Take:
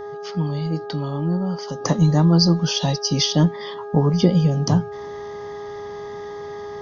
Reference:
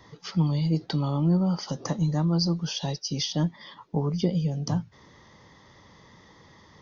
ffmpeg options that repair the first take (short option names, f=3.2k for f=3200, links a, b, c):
-af "bandreject=f=411.8:t=h:w=4,bandreject=f=823.6:t=h:w=4,bandreject=f=1.2354k:t=h:w=4,bandreject=f=1.6472k:t=h:w=4,bandreject=f=660:w=30,asetnsamples=n=441:p=0,asendcmd='1.84 volume volume -9dB',volume=0dB"